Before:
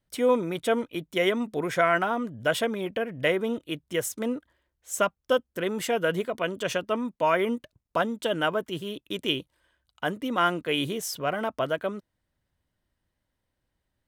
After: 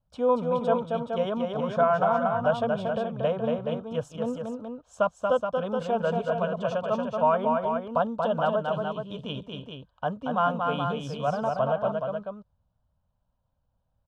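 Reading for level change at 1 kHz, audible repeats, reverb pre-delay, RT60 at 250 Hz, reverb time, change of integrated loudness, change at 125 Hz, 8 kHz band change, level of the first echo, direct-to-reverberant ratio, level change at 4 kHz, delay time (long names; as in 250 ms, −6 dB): +3.0 dB, 3, no reverb audible, no reverb audible, no reverb audible, +0.5 dB, +4.0 dB, below −15 dB, −4.0 dB, no reverb audible, −9.0 dB, 232 ms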